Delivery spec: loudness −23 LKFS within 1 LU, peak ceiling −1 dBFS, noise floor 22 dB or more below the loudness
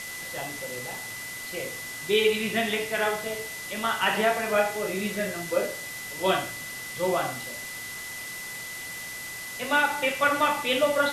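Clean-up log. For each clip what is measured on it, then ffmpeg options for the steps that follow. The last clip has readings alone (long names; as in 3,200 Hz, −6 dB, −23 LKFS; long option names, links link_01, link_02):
interfering tone 2,000 Hz; level of the tone −37 dBFS; background noise floor −37 dBFS; target noise floor −50 dBFS; integrated loudness −27.5 LKFS; sample peak −10.0 dBFS; target loudness −23.0 LKFS
→ -af "bandreject=frequency=2000:width=30"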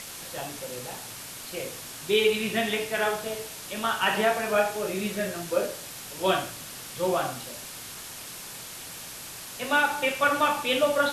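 interfering tone none found; background noise floor −41 dBFS; target noise floor −50 dBFS
→ -af "afftdn=noise_reduction=9:noise_floor=-41"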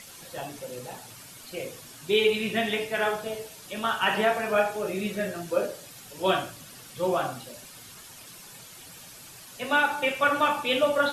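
background noise floor −47 dBFS; target noise floor −49 dBFS
→ -af "afftdn=noise_reduction=6:noise_floor=-47"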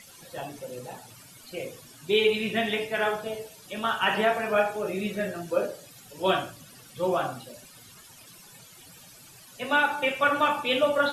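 background noise floor −51 dBFS; integrated loudness −26.5 LKFS; sample peak −10.0 dBFS; target loudness −23.0 LKFS
→ -af "volume=3.5dB"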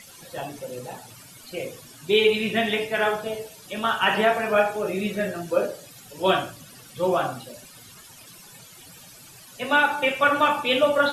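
integrated loudness −23.0 LKFS; sample peak −6.5 dBFS; background noise floor −47 dBFS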